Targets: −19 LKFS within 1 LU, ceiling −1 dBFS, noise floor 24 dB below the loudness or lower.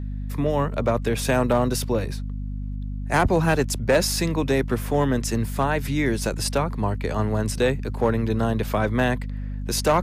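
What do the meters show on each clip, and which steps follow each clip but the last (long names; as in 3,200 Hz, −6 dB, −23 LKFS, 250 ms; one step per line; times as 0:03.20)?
share of clipped samples 0.6%; peaks flattened at −12.0 dBFS; mains hum 50 Hz; hum harmonics up to 250 Hz; level of the hum −27 dBFS; integrated loudness −23.5 LKFS; sample peak −12.0 dBFS; target loudness −19.0 LKFS
→ clipped peaks rebuilt −12 dBFS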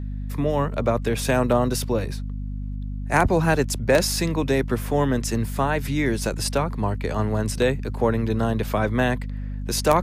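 share of clipped samples 0.0%; mains hum 50 Hz; hum harmonics up to 250 Hz; level of the hum −27 dBFS
→ hum removal 50 Hz, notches 5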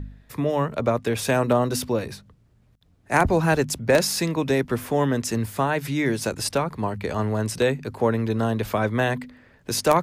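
mains hum none found; integrated loudness −23.5 LKFS; sample peak −3.5 dBFS; target loudness −19.0 LKFS
→ level +4.5 dB
brickwall limiter −1 dBFS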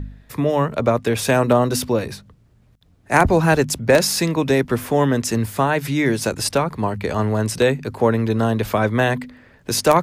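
integrated loudness −19.0 LKFS; sample peak −1.0 dBFS; background noise floor −54 dBFS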